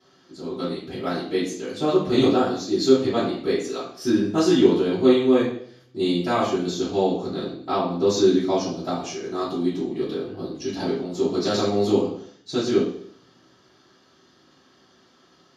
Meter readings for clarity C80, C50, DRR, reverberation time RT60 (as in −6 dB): 8.0 dB, 4.5 dB, −13.5 dB, 0.60 s